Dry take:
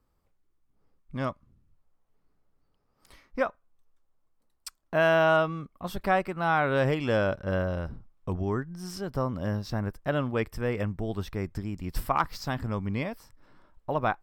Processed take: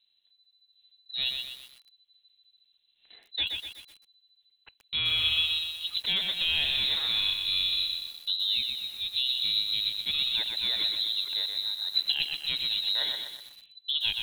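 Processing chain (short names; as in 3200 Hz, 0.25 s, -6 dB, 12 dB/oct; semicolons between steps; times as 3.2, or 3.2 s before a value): limiter -18.5 dBFS, peak gain reduction 7 dB; careless resampling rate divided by 8×, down filtered, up hold; inverted band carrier 4000 Hz; lo-fi delay 0.124 s, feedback 55%, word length 8-bit, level -4.5 dB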